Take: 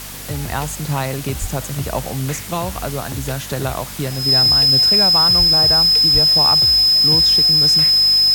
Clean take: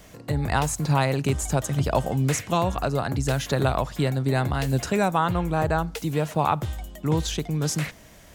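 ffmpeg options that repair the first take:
ffmpeg -i in.wav -filter_complex "[0:a]bandreject=frequency=49.4:width_type=h:width=4,bandreject=frequency=98.8:width_type=h:width=4,bandreject=frequency=148.2:width_type=h:width=4,bandreject=frequency=197.6:width_type=h:width=4,bandreject=frequency=247:width_type=h:width=4,bandreject=frequency=5100:width=30,asplit=3[link_01][link_02][link_03];[link_01]afade=type=out:start_time=1.4:duration=0.02[link_04];[link_02]highpass=frequency=140:width=0.5412,highpass=frequency=140:width=1.3066,afade=type=in:start_time=1.4:duration=0.02,afade=type=out:start_time=1.52:duration=0.02[link_05];[link_03]afade=type=in:start_time=1.52:duration=0.02[link_06];[link_04][link_05][link_06]amix=inputs=3:normalize=0,asplit=3[link_07][link_08][link_09];[link_07]afade=type=out:start_time=5.38:duration=0.02[link_10];[link_08]highpass=frequency=140:width=0.5412,highpass=frequency=140:width=1.3066,afade=type=in:start_time=5.38:duration=0.02,afade=type=out:start_time=5.5:duration=0.02[link_11];[link_09]afade=type=in:start_time=5.5:duration=0.02[link_12];[link_10][link_11][link_12]amix=inputs=3:normalize=0,asplit=3[link_13][link_14][link_15];[link_13]afade=type=out:start_time=6.13:duration=0.02[link_16];[link_14]highpass=frequency=140:width=0.5412,highpass=frequency=140:width=1.3066,afade=type=in:start_time=6.13:duration=0.02,afade=type=out:start_time=6.25:duration=0.02[link_17];[link_15]afade=type=in:start_time=6.25:duration=0.02[link_18];[link_16][link_17][link_18]amix=inputs=3:normalize=0,afwtdn=0.025" out.wav

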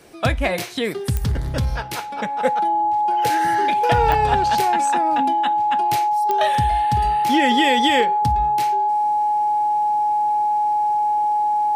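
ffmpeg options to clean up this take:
ffmpeg -i in.wav -af "adeclick=threshold=4,bandreject=frequency=840:width=30" out.wav

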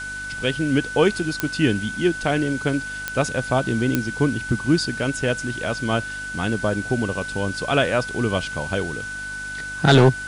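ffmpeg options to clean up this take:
ffmpeg -i in.wav -af "adeclick=threshold=4,bandreject=frequency=49.7:width_type=h:width=4,bandreject=frequency=99.4:width_type=h:width=4,bandreject=frequency=149.1:width_type=h:width=4,bandreject=frequency=198.8:width_type=h:width=4,bandreject=frequency=248.5:width_type=h:width=4,bandreject=frequency=298.2:width_type=h:width=4,bandreject=frequency=1500:width=30,afwtdn=0.01" out.wav

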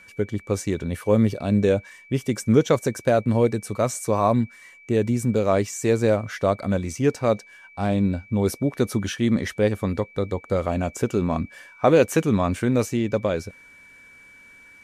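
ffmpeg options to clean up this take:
ffmpeg -i in.wav -af "bandreject=frequency=2300:width=30" out.wav

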